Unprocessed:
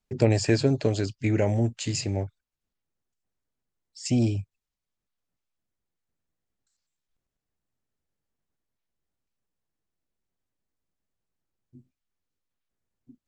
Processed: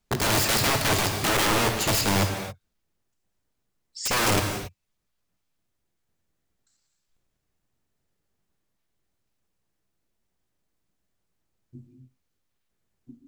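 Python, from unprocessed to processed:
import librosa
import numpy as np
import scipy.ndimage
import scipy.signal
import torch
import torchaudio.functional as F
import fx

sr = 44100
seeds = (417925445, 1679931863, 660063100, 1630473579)

y = (np.mod(10.0 ** (25.0 / 20.0) * x + 1.0, 2.0) - 1.0) / 10.0 ** (25.0 / 20.0)
y = fx.rev_gated(y, sr, seeds[0], gate_ms=300, shape='flat', drr_db=4.5)
y = y * 10.0 ** (6.5 / 20.0)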